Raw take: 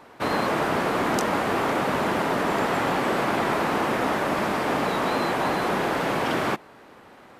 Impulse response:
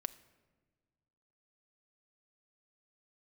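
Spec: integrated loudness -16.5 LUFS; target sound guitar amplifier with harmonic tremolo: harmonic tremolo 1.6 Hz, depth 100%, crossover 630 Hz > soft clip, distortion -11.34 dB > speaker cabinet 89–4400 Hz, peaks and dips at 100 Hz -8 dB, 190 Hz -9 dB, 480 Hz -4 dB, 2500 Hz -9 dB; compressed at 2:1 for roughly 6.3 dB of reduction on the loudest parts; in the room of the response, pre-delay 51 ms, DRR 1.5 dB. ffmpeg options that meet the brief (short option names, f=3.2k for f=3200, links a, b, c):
-filter_complex "[0:a]acompressor=threshold=-32dB:ratio=2,asplit=2[a][b];[1:a]atrim=start_sample=2205,adelay=51[c];[b][c]afir=irnorm=-1:irlink=0,volume=0dB[d];[a][d]amix=inputs=2:normalize=0,acrossover=split=630[e][f];[e]aeval=exprs='val(0)*(1-1/2+1/2*cos(2*PI*1.6*n/s))':c=same[g];[f]aeval=exprs='val(0)*(1-1/2-1/2*cos(2*PI*1.6*n/s))':c=same[h];[g][h]amix=inputs=2:normalize=0,asoftclip=threshold=-32.5dB,highpass=89,equalizer=f=100:t=q:w=4:g=-8,equalizer=f=190:t=q:w=4:g=-9,equalizer=f=480:t=q:w=4:g=-4,equalizer=f=2.5k:t=q:w=4:g=-9,lowpass=f=4.4k:w=0.5412,lowpass=f=4.4k:w=1.3066,volume=22dB"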